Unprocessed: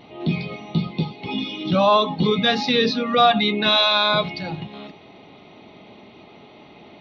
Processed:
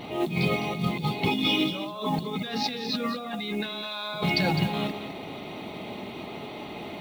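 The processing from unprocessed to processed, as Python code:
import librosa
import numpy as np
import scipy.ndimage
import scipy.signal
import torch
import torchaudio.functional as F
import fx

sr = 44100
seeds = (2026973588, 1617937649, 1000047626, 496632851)

p1 = fx.over_compress(x, sr, threshold_db=-30.0, ratio=-1.0)
p2 = fx.mod_noise(p1, sr, seeds[0], snr_db=26)
y = p2 + fx.echo_single(p2, sr, ms=207, db=-10.5, dry=0)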